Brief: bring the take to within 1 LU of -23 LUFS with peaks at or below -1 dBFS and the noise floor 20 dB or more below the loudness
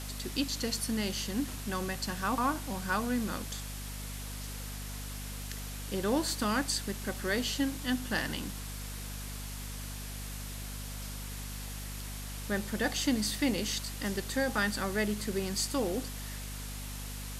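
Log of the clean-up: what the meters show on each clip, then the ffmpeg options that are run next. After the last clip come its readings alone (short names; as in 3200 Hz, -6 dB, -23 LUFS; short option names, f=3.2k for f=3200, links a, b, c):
hum 50 Hz; harmonics up to 250 Hz; hum level -39 dBFS; noise floor -40 dBFS; noise floor target -54 dBFS; loudness -34.0 LUFS; peak -17.0 dBFS; loudness target -23.0 LUFS
-> -af "bandreject=f=50:t=h:w=4,bandreject=f=100:t=h:w=4,bandreject=f=150:t=h:w=4,bandreject=f=200:t=h:w=4,bandreject=f=250:t=h:w=4"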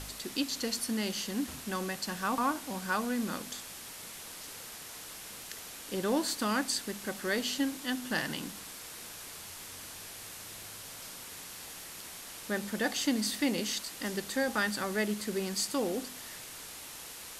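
hum none; noise floor -46 dBFS; noise floor target -55 dBFS
-> -af "afftdn=nr=9:nf=-46"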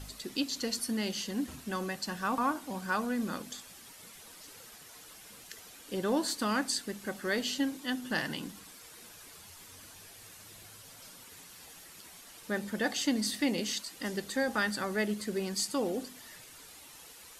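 noise floor -52 dBFS; noise floor target -53 dBFS
-> -af "afftdn=nr=6:nf=-52"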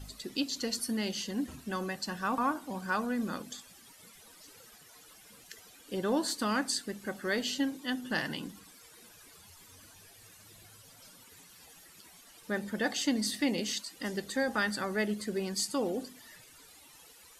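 noise floor -56 dBFS; loudness -33.0 LUFS; peak -16.5 dBFS; loudness target -23.0 LUFS
-> -af "volume=10dB"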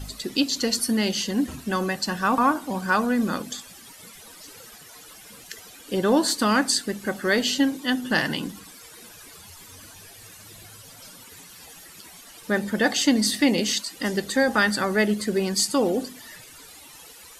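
loudness -23.0 LUFS; peak -6.5 dBFS; noise floor -46 dBFS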